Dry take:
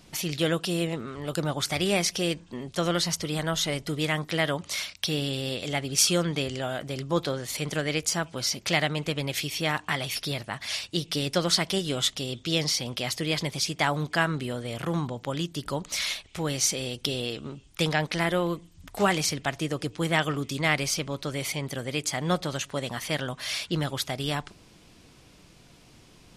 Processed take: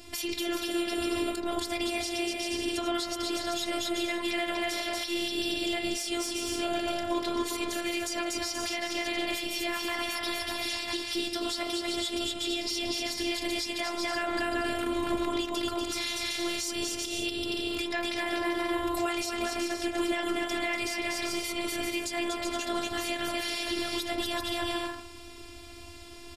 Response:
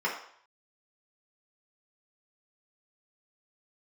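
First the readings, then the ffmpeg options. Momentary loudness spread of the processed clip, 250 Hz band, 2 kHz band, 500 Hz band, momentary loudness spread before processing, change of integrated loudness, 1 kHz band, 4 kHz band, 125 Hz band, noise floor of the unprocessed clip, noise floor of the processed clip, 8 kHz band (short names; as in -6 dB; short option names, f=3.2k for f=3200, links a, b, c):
2 LU, -1.0 dB, -2.5 dB, -2.5 dB, 7 LU, -3.0 dB, -1.5 dB, -2.5 dB, -19.5 dB, -55 dBFS, -45 dBFS, -5.5 dB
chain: -filter_complex "[0:a]acontrast=42,aecho=1:1:240|384|470.4|522.2|553.3:0.631|0.398|0.251|0.158|0.1,acompressor=threshold=-22dB:ratio=6,asplit=2[a][b];[1:a]atrim=start_sample=2205,lowpass=f=4k:w=0.5412,lowpass=f=4k:w=1.3066[c];[b][c]afir=irnorm=-1:irlink=0,volume=-14dB[d];[a][d]amix=inputs=2:normalize=0,afftfilt=real='hypot(re,im)*cos(PI*b)':imag='0':win_size=512:overlap=0.75,bandreject=f=6.2k:w=13,alimiter=limit=-20dB:level=0:latency=1:release=249,equalizer=f=76:w=2:g=11.5,volume=3.5dB"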